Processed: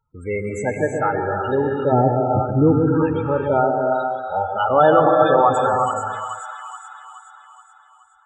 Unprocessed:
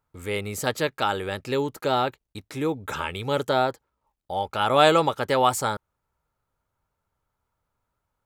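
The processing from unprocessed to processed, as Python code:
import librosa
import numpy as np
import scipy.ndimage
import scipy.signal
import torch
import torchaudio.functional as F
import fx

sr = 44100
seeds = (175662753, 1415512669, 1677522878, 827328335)

p1 = fx.tilt_eq(x, sr, slope=-4.0, at=(1.92, 2.79))
p2 = fx.echo_split(p1, sr, split_hz=990.0, low_ms=134, high_ms=424, feedback_pct=52, wet_db=-6)
p3 = (np.mod(10.0 ** (5.5 / 20.0) * p2 + 1.0, 2.0) - 1.0) / 10.0 ** (5.5 / 20.0)
p4 = p2 + F.gain(torch.from_numpy(p3), -3.5).numpy()
p5 = fx.spec_topn(p4, sr, count=16)
y = fx.rev_gated(p5, sr, seeds[0], gate_ms=390, shape='rising', drr_db=2.5)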